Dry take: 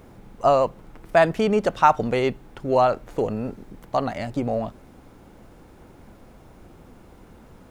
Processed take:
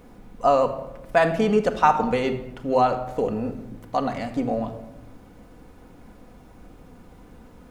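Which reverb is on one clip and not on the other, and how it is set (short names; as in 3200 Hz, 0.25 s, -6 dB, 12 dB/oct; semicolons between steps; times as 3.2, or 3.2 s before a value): shoebox room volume 3400 m³, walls furnished, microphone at 1.9 m; gain -2 dB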